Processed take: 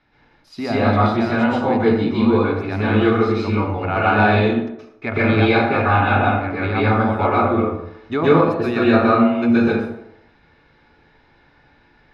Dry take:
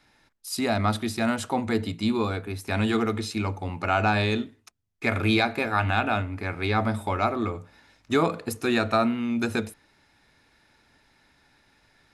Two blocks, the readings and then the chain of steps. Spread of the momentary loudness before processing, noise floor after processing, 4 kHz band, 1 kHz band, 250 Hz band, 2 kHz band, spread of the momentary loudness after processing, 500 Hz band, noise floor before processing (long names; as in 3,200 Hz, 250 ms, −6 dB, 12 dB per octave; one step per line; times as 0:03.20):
8 LU, −56 dBFS, +1.5 dB, +8.5 dB, +9.5 dB, +7.0 dB, 9 LU, +10.5 dB, −64 dBFS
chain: high-frequency loss of the air 270 metres
delay with a band-pass on its return 78 ms, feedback 47%, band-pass 540 Hz, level −8 dB
dense smooth reverb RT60 0.66 s, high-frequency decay 0.7×, pre-delay 110 ms, DRR −7.5 dB
level +1 dB